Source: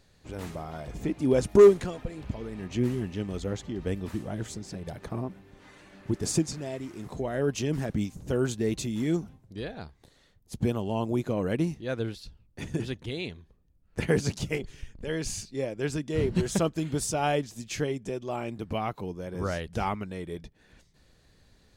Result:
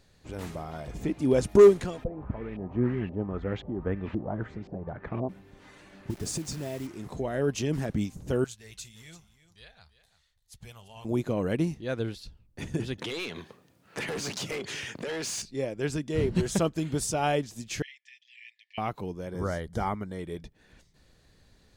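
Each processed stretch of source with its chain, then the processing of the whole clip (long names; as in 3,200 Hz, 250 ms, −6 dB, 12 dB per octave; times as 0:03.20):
0:02.04–0:05.29: high-shelf EQ 4,600 Hz −6 dB + auto-filter low-pass saw up 1.9 Hz 580–3,100 Hz + one half of a high-frequency compander decoder only
0:06.10–0:06.87: low-shelf EQ 170 Hz +3.5 dB + downward compressor, threshold −29 dBFS + bit-depth reduction 8 bits, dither none
0:08.44–0:11.05: guitar amp tone stack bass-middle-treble 10-0-10 + flanger 1.5 Hz, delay 0.4 ms, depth 7.5 ms, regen −74% + single-tap delay 339 ms −14.5 dB
0:12.98–0:15.42: high-pass filter 99 Hz 24 dB per octave + mid-hump overdrive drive 29 dB, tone 5,200 Hz, clips at −10 dBFS + downward compressor 8 to 1, threshold −32 dBFS
0:17.82–0:18.78: linear-phase brick-wall high-pass 1,700 Hz + high-frequency loss of the air 200 metres + notch filter 6,400 Hz, Q 21
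0:19.32–0:20.19: dynamic equaliser 3,800 Hz, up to −6 dB, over −50 dBFS, Q 0.82 + Butterworth band-reject 2,600 Hz, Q 4.3
whole clip: no processing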